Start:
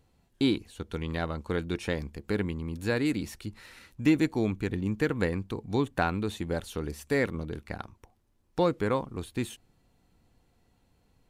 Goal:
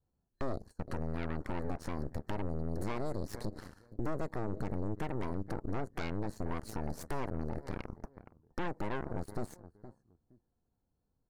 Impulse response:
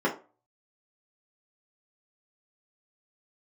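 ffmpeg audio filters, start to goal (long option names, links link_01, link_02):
-filter_complex "[0:a]asplit=2[link_01][link_02];[link_02]asoftclip=type=tanh:threshold=-30dB,volume=-4.5dB[link_03];[link_01][link_03]amix=inputs=2:normalize=0,tiltshelf=frequency=1500:gain=5.5,acompressor=threshold=-31dB:ratio=2,agate=range=-17dB:threshold=-45dB:ratio=16:detection=peak,adynamicequalizer=threshold=0.0126:dfrequency=300:dqfactor=2:tfrequency=300:tqfactor=2:attack=5:release=100:ratio=0.375:range=2:mode=cutabove:tftype=bell,afftfilt=real='re*(1-between(b*sr/4096,1800,4100))':imag='im*(1-between(b*sr/4096,1800,4100))':win_size=4096:overlap=0.75,asplit=2[link_04][link_05];[link_05]adelay=468,lowpass=frequency=1700:poles=1,volume=-19dB,asplit=2[link_06][link_07];[link_07]adelay=468,lowpass=frequency=1700:poles=1,volume=0.29[link_08];[link_06][link_08]amix=inputs=2:normalize=0[link_09];[link_04][link_09]amix=inputs=2:normalize=0,aeval=exprs='0.168*(cos(1*acos(clip(val(0)/0.168,-1,1)))-cos(1*PI/2))+0.0075*(cos(3*acos(clip(val(0)/0.168,-1,1)))-cos(3*PI/2))+0.0668*(cos(4*acos(clip(val(0)/0.168,-1,1)))-cos(4*PI/2))+0.0119*(cos(7*acos(clip(val(0)/0.168,-1,1)))-cos(7*PI/2))+0.0473*(cos(8*acos(clip(val(0)/0.168,-1,1)))-cos(8*PI/2))':channel_layout=same,alimiter=level_in=3.5dB:limit=-24dB:level=0:latency=1:release=105,volume=-3.5dB,volume=2dB"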